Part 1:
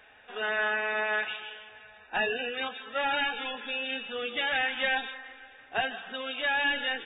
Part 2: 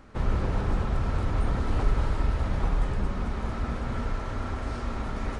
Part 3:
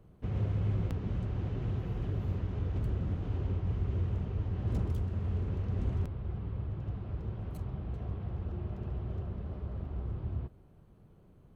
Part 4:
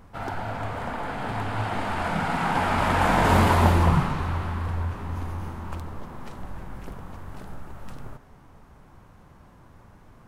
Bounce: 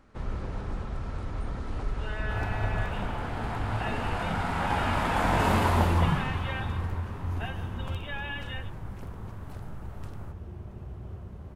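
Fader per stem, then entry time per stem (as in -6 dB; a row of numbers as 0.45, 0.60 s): -10.0, -7.5, -4.0, -5.0 dB; 1.65, 0.00, 1.95, 2.15 s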